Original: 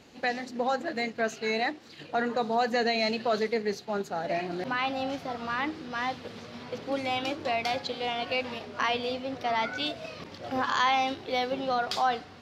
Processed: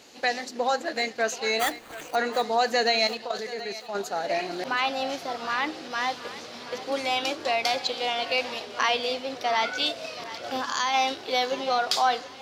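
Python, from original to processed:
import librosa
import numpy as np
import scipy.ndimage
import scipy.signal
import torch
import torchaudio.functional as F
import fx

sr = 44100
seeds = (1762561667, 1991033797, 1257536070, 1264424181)

p1 = fx.bass_treble(x, sr, bass_db=-13, treble_db=11)
p2 = fx.spec_box(p1, sr, start_s=10.57, length_s=0.37, low_hz=330.0, high_hz=4500.0, gain_db=-6)
p3 = fx.high_shelf(p2, sr, hz=5300.0, db=-4.5)
p4 = fx.sample_hold(p3, sr, seeds[0], rate_hz=5300.0, jitter_pct=0, at=(1.59, 2.14), fade=0.02)
p5 = fx.level_steps(p4, sr, step_db=12, at=(3.07, 3.95))
p6 = p5 + fx.echo_thinned(p5, sr, ms=727, feedback_pct=46, hz=420.0, wet_db=-15.0, dry=0)
y = p6 * librosa.db_to_amplitude(3.5)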